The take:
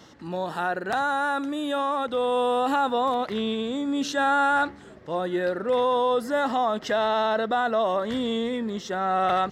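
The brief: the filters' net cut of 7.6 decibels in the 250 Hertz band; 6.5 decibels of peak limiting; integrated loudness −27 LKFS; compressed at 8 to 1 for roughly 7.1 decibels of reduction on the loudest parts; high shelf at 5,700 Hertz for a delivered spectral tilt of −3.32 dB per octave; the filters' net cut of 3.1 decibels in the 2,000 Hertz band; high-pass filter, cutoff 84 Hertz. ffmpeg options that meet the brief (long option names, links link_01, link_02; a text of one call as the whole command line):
ffmpeg -i in.wav -af "highpass=84,equalizer=frequency=250:width_type=o:gain=-9,equalizer=frequency=2000:width_type=o:gain=-5.5,highshelf=frequency=5700:gain=7,acompressor=threshold=-28dB:ratio=8,volume=7.5dB,alimiter=limit=-18.5dB:level=0:latency=1" out.wav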